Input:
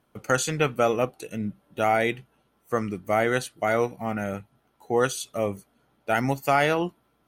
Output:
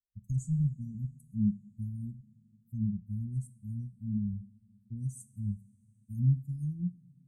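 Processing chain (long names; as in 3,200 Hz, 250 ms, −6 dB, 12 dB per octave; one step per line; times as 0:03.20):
spectral dynamics exaggerated over time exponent 2
Chebyshev band-stop filter 220–7,400 Hz, order 5
high-shelf EQ 9,300 Hz −8 dB
treble cut that deepens with the level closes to 2,300 Hz, closed at −30.5 dBFS
low-shelf EQ 150 Hz +11 dB
coupled-rooms reverb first 0.5 s, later 4.8 s, from −21 dB, DRR 13 dB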